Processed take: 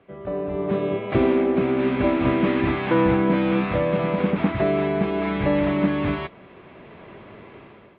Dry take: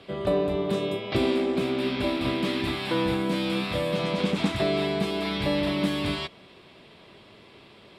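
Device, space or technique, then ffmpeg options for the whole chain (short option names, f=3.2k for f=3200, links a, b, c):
action camera in a waterproof case: -af "lowpass=f=2.2k:w=0.5412,lowpass=f=2.2k:w=1.3066,dynaudnorm=f=240:g=5:m=16dB,volume=-6.5dB" -ar 32000 -c:a aac -b:a 48k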